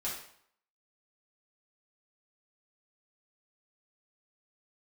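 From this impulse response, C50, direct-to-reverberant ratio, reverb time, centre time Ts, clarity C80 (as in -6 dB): 3.5 dB, -7.5 dB, 0.65 s, 41 ms, 8.0 dB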